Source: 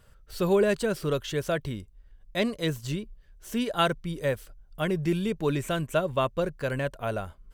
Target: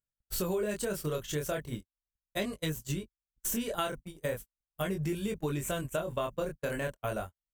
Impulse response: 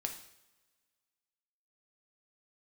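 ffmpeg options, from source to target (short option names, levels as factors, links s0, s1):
-af "acompressor=mode=upward:threshold=0.0398:ratio=2.5,aeval=exprs='val(0)+0.00355*(sin(2*PI*50*n/s)+sin(2*PI*2*50*n/s)/2+sin(2*PI*3*50*n/s)/3+sin(2*PI*4*50*n/s)/4+sin(2*PI*5*50*n/s)/5)':c=same,flanger=delay=19.5:depth=7.4:speed=0.38,aexciter=amount=3.8:drive=1:freq=6300,agate=range=0.00158:threshold=0.0178:ratio=16:detection=peak,acompressor=threshold=0.0282:ratio=5,volume=1.19"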